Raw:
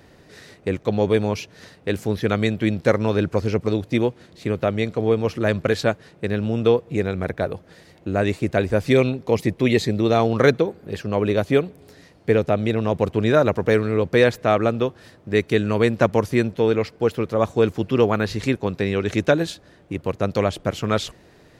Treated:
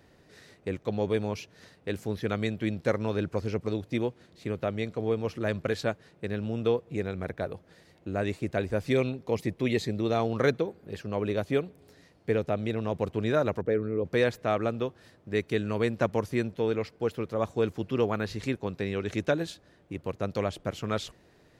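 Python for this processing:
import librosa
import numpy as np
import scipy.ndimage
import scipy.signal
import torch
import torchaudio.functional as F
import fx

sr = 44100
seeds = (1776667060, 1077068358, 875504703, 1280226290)

y = fx.envelope_sharpen(x, sr, power=1.5, at=(13.61, 14.05))
y = y * 10.0 ** (-9.0 / 20.0)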